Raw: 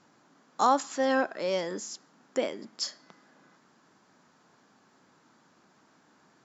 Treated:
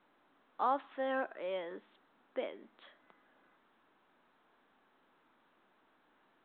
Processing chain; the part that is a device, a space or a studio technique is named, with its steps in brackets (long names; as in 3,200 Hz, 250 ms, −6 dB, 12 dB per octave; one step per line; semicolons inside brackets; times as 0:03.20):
telephone (band-pass filter 300–3,400 Hz; level −8.5 dB; mu-law 64 kbit/s 8,000 Hz)